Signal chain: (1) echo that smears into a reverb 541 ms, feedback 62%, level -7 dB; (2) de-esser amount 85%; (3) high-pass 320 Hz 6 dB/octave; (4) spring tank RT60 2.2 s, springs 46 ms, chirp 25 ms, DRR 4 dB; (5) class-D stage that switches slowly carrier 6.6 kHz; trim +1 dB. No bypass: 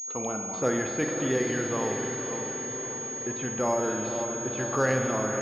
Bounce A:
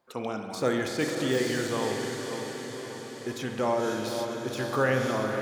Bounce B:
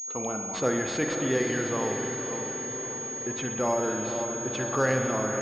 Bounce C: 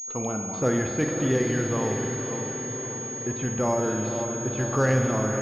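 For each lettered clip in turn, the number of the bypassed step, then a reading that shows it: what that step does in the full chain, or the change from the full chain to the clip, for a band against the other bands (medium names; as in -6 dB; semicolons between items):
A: 5, 4 kHz band +7.0 dB; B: 2, 4 kHz band +3.0 dB; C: 3, 125 Hz band +8.0 dB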